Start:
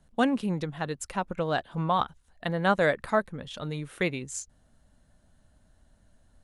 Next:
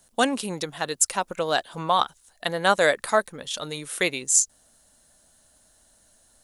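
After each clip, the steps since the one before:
bass and treble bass −13 dB, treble +15 dB
level +4.5 dB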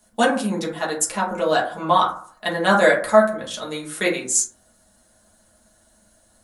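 convolution reverb RT60 0.50 s, pre-delay 5 ms, DRR −5.5 dB
level −3 dB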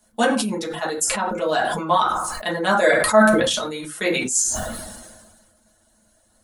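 reverb reduction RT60 0.53 s
reverb whose tail is shaped and stops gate 130 ms falling, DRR 11.5 dB
level that may fall only so fast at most 36 dB per second
level −2 dB

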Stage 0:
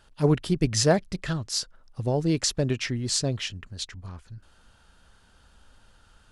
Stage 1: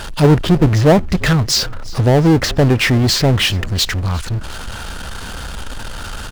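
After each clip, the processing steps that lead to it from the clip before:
treble cut that deepens with the level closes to 870 Hz, closed at −18.5 dBFS
power curve on the samples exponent 0.5
echo with shifted repeats 355 ms, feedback 52%, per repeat −39 Hz, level −21 dB
level +7.5 dB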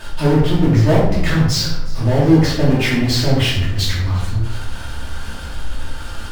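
convolution reverb RT60 0.75 s, pre-delay 3 ms, DRR −8.5 dB
level −12.5 dB

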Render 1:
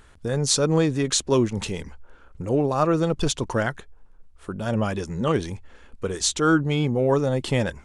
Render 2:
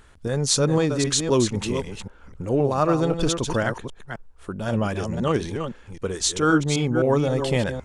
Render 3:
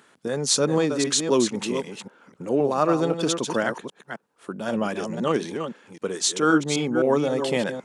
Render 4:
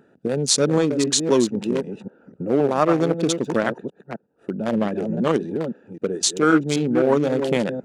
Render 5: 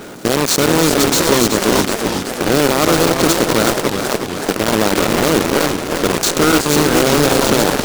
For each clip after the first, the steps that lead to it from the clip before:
delay that plays each chunk backwards 260 ms, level −7 dB
high-pass filter 180 Hz 24 dB per octave
adaptive Wiener filter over 41 samples; in parallel at +2.5 dB: downward compressor, threshold −30 dBFS, peak gain reduction 14.5 dB; on the sum: level +1 dB
compressor on every frequency bin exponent 0.4; log-companded quantiser 2 bits; feedback echo with a swinging delay time 370 ms, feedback 66%, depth 216 cents, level −7.5 dB; level −7 dB

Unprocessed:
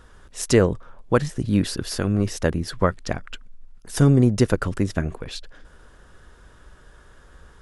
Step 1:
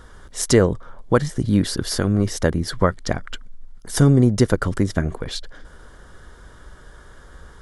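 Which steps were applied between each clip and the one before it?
notch filter 2,600 Hz, Q 5.2
in parallel at −1.5 dB: downward compressor, threshold −25 dBFS, peak gain reduction 13.5 dB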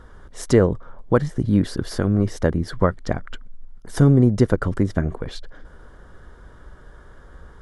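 high-shelf EQ 2,600 Hz −12 dB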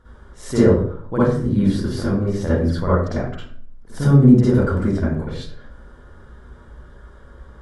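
convolution reverb RT60 0.55 s, pre-delay 47 ms, DRR −10.5 dB
level −10.5 dB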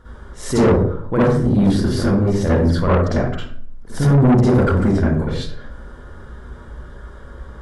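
soft clipping −16 dBFS, distortion −7 dB
level +6.5 dB

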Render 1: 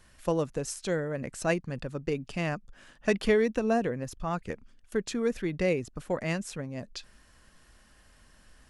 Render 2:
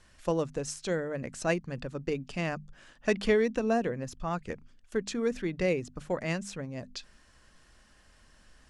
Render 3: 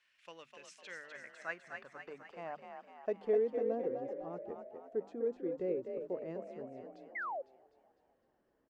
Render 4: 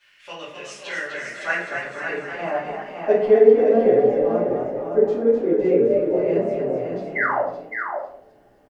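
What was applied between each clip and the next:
Chebyshev low-pass filter 7,500 Hz, order 2; mains-hum notches 50/100/150/200/250 Hz
band-pass filter sweep 2,500 Hz → 400 Hz, 0:00.66–0:03.60; echo with shifted repeats 252 ms, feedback 55%, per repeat +43 Hz, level −6 dB; sound drawn into the spectrogram fall, 0:07.15–0:07.42, 500–2,200 Hz −35 dBFS; level −4 dB
single-tap delay 563 ms −6 dB; rectangular room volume 82 cubic metres, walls mixed, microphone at 2.5 metres; level +7.5 dB

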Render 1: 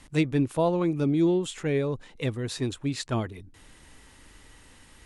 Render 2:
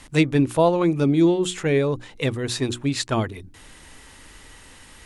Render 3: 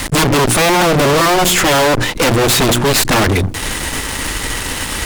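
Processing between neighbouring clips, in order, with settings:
low-shelf EQ 470 Hz −3 dB; mains-hum notches 60/120/180/240/300/360 Hz; level +8 dB
harmonic generator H 3 −9 dB, 7 −13 dB, 8 −7 dB, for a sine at −6.5 dBFS; fuzz pedal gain 37 dB, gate −46 dBFS; level +2.5 dB

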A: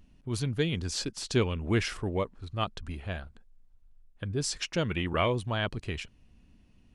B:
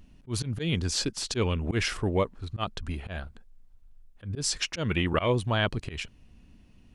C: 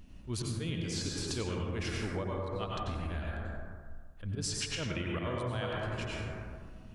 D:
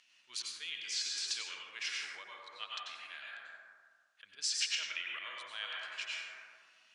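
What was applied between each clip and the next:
volume swells 113 ms; level +4.5 dB
dense smooth reverb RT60 1.6 s, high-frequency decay 0.35×, pre-delay 80 ms, DRR −2.5 dB; downward compressor 6 to 1, threshold −33 dBFS, peak gain reduction 15 dB
flat-topped band-pass 3,700 Hz, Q 0.71; level +4 dB

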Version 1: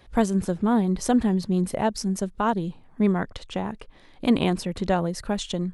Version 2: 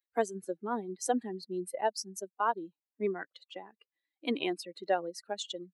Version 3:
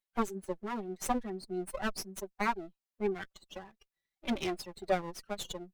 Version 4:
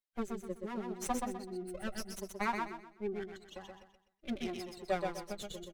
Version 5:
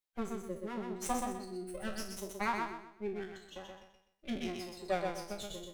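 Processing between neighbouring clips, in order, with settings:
spectral dynamics exaggerated over time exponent 2; high-pass filter 310 Hz 24 dB per octave; level −2 dB
lower of the sound and its delayed copy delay 5.2 ms
rotating-speaker cabinet horn 0.75 Hz; repeating echo 126 ms, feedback 33%, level −4 dB; level −2.5 dB
peak hold with a decay on every bin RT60 0.40 s; level −1 dB

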